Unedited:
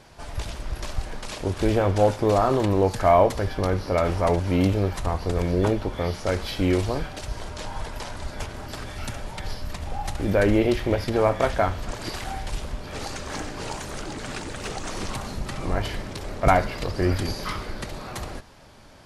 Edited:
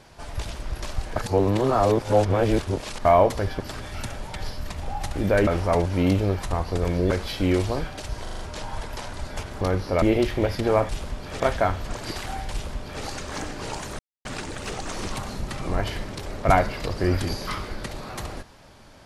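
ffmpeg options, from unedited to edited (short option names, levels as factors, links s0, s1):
-filter_complex "[0:a]asplit=16[s0][s1][s2][s3][s4][s5][s6][s7][s8][s9][s10][s11][s12][s13][s14][s15];[s0]atrim=end=1.162[s16];[s1]atrim=start=1.158:end=3.052,asetpts=PTS-STARTPTS,areverse[s17];[s2]atrim=start=3.048:end=3.602[s18];[s3]atrim=start=8.638:end=10.512[s19];[s4]atrim=start=4.008:end=5.652[s20];[s5]atrim=start=6.298:end=7.462[s21];[s6]atrim=start=7.418:end=7.462[s22];[s7]atrim=start=7.418:end=7.462[s23];[s8]atrim=start=7.418:end=7.462[s24];[s9]atrim=start=7.418:end=8.642[s25];[s10]atrim=start=3.598:end=4.012[s26];[s11]atrim=start=10.508:end=11.382[s27];[s12]atrim=start=12.498:end=13.012[s28];[s13]atrim=start=11.378:end=13.97,asetpts=PTS-STARTPTS,afade=t=out:st=2.588:d=0.004:c=hsin[s29];[s14]atrim=start=13.97:end=14.23,asetpts=PTS-STARTPTS,volume=0[s30];[s15]atrim=start=14.23,asetpts=PTS-STARTPTS,afade=t=in:d=0.004:c=hsin[s31];[s16][s17]acrossfade=d=0.004:c1=hsin:c2=hsin[s32];[s32][s18]acrossfade=d=0.004:c1=hsin:c2=hsin[s33];[s33][s19]acrossfade=d=0.004:c1=hsin:c2=hsin[s34];[s34][s20]acrossfade=d=0.004:c1=hsin:c2=hsin[s35];[s35][s21]acrossfade=d=0.004:c1=hsin:c2=hsin[s36];[s36][s22]acrossfade=d=0.004:c1=hsin:c2=hsin[s37];[s37][s23]acrossfade=d=0.004:c1=hsin:c2=hsin[s38];[s38][s24]acrossfade=d=0.004:c1=hsin:c2=hsin[s39];[s39][s25]acrossfade=d=0.004:c1=hsin:c2=hsin[s40];[s40][s26]acrossfade=d=0.004:c1=hsin:c2=hsin[s41];[s41][s27]acrossfade=d=0.004:c1=hsin:c2=hsin[s42];[s42][s28]acrossfade=d=0.004:c1=hsin:c2=hsin[s43];[s29][s30][s31]concat=n=3:v=0:a=1[s44];[s43][s44]acrossfade=d=0.004:c1=hsin:c2=hsin"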